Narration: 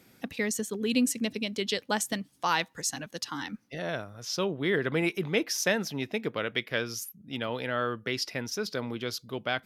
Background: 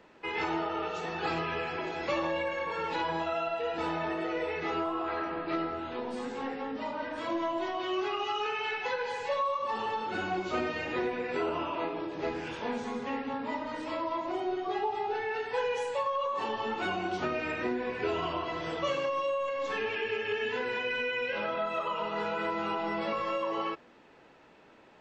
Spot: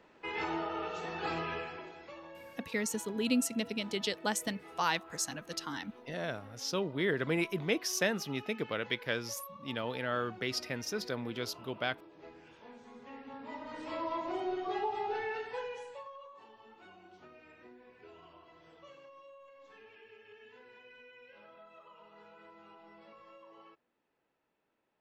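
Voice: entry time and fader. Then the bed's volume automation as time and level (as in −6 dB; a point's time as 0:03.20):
2.35 s, −4.0 dB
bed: 0:01.53 −4 dB
0:02.13 −19 dB
0:12.79 −19 dB
0:14.05 −3 dB
0:15.26 −3 dB
0:16.48 −24 dB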